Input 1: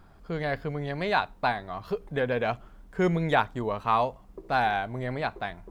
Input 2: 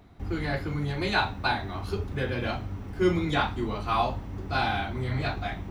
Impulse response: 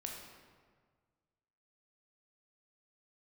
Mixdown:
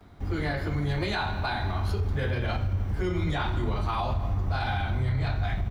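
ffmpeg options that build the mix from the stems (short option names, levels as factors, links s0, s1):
-filter_complex "[0:a]highpass=510,volume=0.531[s0];[1:a]asubboost=boost=4.5:cutoff=120,adelay=8.1,volume=0.891,asplit=2[s1][s2];[s2]volume=0.708[s3];[2:a]atrim=start_sample=2205[s4];[s3][s4]afir=irnorm=-1:irlink=0[s5];[s0][s1][s5]amix=inputs=3:normalize=0,bandreject=f=2600:w=19,alimiter=limit=0.106:level=0:latency=1:release=71"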